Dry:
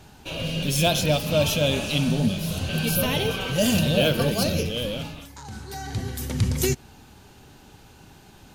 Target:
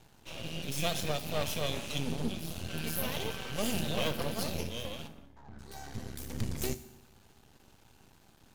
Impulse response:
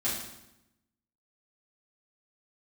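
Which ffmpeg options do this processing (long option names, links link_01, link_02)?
-filter_complex "[0:a]aeval=exprs='max(val(0),0)':channel_layout=same,asplit=3[link_01][link_02][link_03];[link_01]afade=type=out:start_time=5.07:duration=0.02[link_04];[link_02]adynamicsmooth=sensitivity=4.5:basefreq=1300,afade=type=in:start_time=5.07:duration=0.02,afade=type=out:start_time=5.58:duration=0.02[link_05];[link_03]afade=type=in:start_time=5.58:duration=0.02[link_06];[link_04][link_05][link_06]amix=inputs=3:normalize=0,asplit=2[link_07][link_08];[link_08]highshelf=frequency=5800:gain=11.5[link_09];[1:a]atrim=start_sample=2205[link_10];[link_09][link_10]afir=irnorm=-1:irlink=0,volume=-20.5dB[link_11];[link_07][link_11]amix=inputs=2:normalize=0,volume=-8.5dB"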